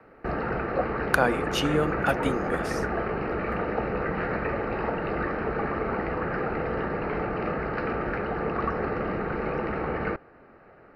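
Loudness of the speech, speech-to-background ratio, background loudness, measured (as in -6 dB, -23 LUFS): -27.5 LUFS, 1.5 dB, -29.0 LUFS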